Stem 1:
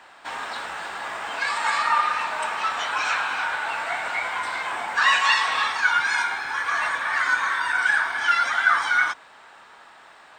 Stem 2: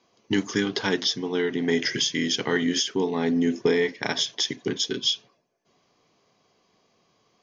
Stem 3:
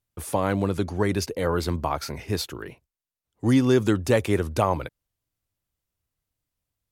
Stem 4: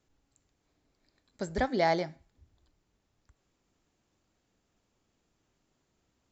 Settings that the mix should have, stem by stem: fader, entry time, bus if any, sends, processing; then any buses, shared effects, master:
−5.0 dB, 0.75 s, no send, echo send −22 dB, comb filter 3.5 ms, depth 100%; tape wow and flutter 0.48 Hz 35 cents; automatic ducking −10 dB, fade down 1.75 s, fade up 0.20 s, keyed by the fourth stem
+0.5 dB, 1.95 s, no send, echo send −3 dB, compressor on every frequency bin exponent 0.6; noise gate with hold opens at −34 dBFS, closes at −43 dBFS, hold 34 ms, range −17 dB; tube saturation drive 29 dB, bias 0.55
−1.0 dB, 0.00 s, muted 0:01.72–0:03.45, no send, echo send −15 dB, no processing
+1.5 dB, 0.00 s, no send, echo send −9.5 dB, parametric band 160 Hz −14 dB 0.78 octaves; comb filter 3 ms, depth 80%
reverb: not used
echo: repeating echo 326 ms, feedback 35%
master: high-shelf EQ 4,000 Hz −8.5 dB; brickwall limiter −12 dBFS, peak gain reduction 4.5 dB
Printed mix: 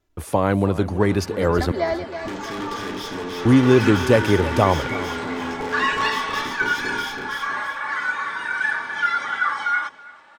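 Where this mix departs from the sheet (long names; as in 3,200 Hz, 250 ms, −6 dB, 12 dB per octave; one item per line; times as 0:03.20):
stem 3 −1.0 dB → +5.0 dB
master: missing brickwall limiter −12 dBFS, peak gain reduction 4.5 dB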